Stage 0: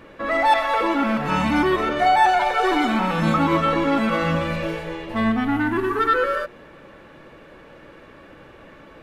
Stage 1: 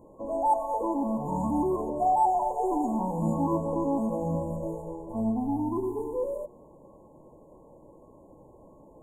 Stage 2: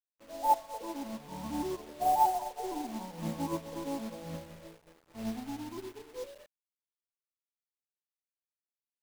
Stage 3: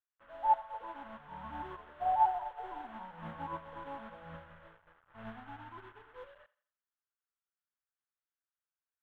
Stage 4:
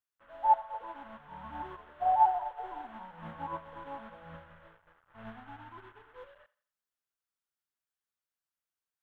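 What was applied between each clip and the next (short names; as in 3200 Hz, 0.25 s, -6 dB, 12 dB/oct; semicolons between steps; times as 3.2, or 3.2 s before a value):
FFT band-reject 1100–6600 Hz; gain -6.5 dB
bit-crush 6-bit; upward expander 2.5:1, over -39 dBFS
EQ curve 100 Hz 0 dB, 310 Hz -14 dB, 1500 Hz +10 dB, 2300 Hz -4 dB, 3300 Hz -4 dB, 4800 Hz -30 dB; thinning echo 85 ms, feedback 40%, high-pass 460 Hz, level -19 dB; gain -3 dB
dynamic EQ 720 Hz, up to +4 dB, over -43 dBFS, Q 1.1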